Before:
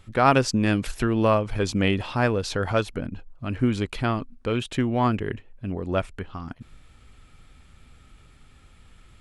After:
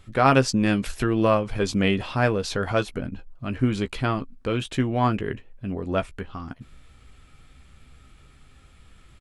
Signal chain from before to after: notch 880 Hz, Q 25; doubler 15 ms -9.5 dB

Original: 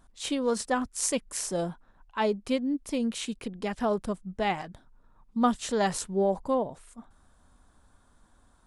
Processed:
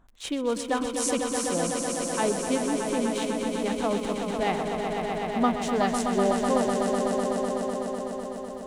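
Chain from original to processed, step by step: Wiener smoothing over 9 samples; crackle 19/s -43 dBFS; swelling echo 0.125 s, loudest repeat 5, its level -7 dB

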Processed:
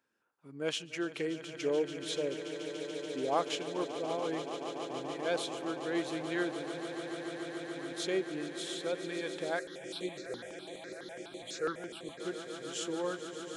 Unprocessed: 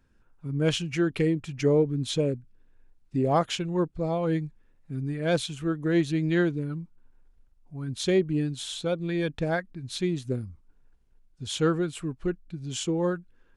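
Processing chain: HPF 400 Hz 12 dB/oct; swelling echo 0.144 s, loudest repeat 8, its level -14 dB; 9.59–12.2 step phaser 12 Hz 900–5100 Hz; gain -6 dB

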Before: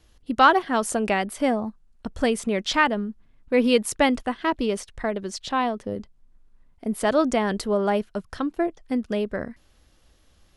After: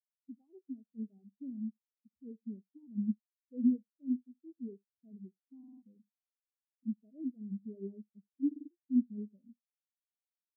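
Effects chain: nonlinear frequency compression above 1200 Hz 1.5:1; compressor 6:1, threshold -30 dBFS, peak gain reduction 17.5 dB; bell 2000 Hz -13 dB 2.5 oct; limiter -30.5 dBFS, peak gain reduction 8.5 dB; HPF 130 Hz; tilt shelf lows +7 dB, about 810 Hz; early reflections 56 ms -18 dB, 76 ms -11 dB; stuck buffer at 5.59/8.47, samples 2048, times 4; spectral expander 4:1; gain +4 dB

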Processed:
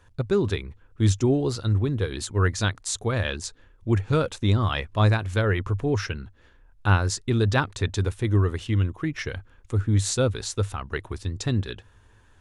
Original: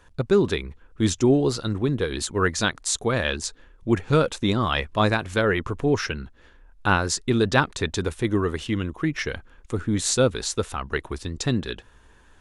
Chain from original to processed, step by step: bell 100 Hz +14.5 dB 0.41 oct; gain -4 dB

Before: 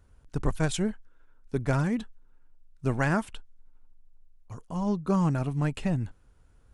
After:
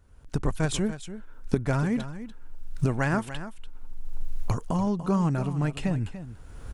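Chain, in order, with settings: recorder AGC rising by 28 dB/s; echo 0.291 s -12.5 dB

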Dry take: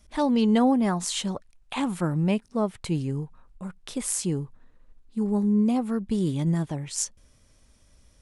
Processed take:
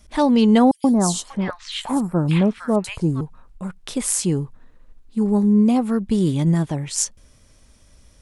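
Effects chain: 0.71–3.21 three bands offset in time highs, lows, mids 0.13/0.59 s, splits 1300/4000 Hz; gain +6.5 dB

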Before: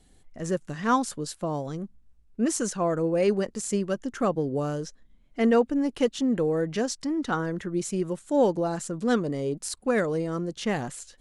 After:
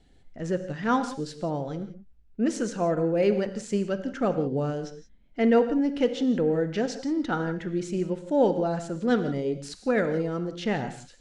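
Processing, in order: LPF 4500 Hz 12 dB/oct; notch 1100 Hz, Q 5.4; non-linear reverb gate 0.2 s flat, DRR 9 dB

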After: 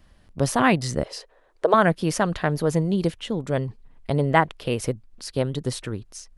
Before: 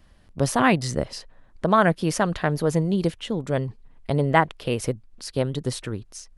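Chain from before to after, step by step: 1.03–1.74 resonant low shelf 290 Hz -13.5 dB, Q 3

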